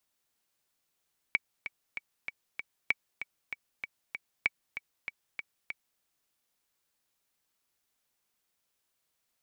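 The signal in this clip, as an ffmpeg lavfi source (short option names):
-f lavfi -i "aevalsrc='pow(10,(-12-11*gte(mod(t,5*60/193),60/193))/20)*sin(2*PI*2270*mod(t,60/193))*exp(-6.91*mod(t,60/193)/0.03)':d=4.66:s=44100"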